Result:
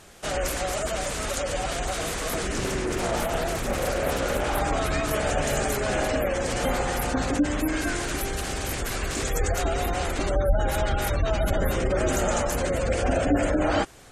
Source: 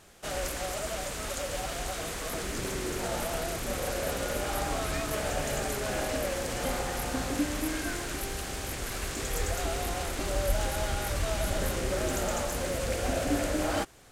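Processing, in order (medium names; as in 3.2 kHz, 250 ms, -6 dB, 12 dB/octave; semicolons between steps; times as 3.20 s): spectral gate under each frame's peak -25 dB strong; 2.53–4.61 s: loudspeaker Doppler distortion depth 0.39 ms; trim +6.5 dB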